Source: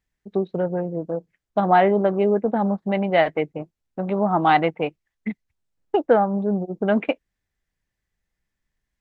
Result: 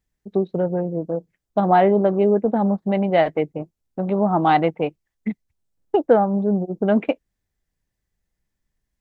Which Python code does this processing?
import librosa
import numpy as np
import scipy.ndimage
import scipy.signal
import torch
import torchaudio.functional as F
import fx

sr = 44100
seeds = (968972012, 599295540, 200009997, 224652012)

y = fx.peak_eq(x, sr, hz=2000.0, db=-6.5, octaves=2.3)
y = F.gain(torch.from_numpy(y), 3.0).numpy()